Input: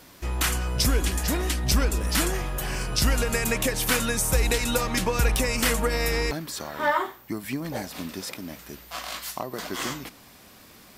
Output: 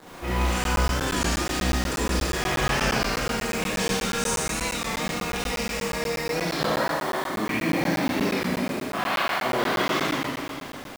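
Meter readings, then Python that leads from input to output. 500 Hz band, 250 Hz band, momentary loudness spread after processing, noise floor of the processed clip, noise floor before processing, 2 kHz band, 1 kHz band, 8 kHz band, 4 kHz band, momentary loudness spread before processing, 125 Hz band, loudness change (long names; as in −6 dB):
+2.0 dB, +3.0 dB, 4 LU, −37 dBFS, −51 dBFS, +2.5 dB, +4.0 dB, −2.5 dB, +0.5 dB, 12 LU, −1.5 dB, +0.5 dB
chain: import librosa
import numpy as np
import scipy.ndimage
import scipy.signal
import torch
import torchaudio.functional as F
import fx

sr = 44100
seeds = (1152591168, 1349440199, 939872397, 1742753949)

y = scipy.signal.sosfilt(scipy.signal.butter(2, 6300.0, 'lowpass', fs=sr, output='sos'), x)
y = fx.env_lowpass(y, sr, base_hz=860.0, full_db=-22.5)
y = fx.highpass(y, sr, hz=46.0, slope=6)
y = fx.low_shelf(y, sr, hz=140.0, db=-11.0)
y = fx.over_compress(y, sr, threshold_db=-36.0, ratio=-1.0)
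y = fx.quant_dither(y, sr, seeds[0], bits=8, dither='none')
y = fx.rev_schroeder(y, sr, rt60_s=2.4, comb_ms=32, drr_db=-9.5)
y = fx.buffer_crackle(y, sr, first_s=0.64, period_s=0.12, block=512, kind='zero')
y = fx.record_warp(y, sr, rpm=33.33, depth_cents=100.0)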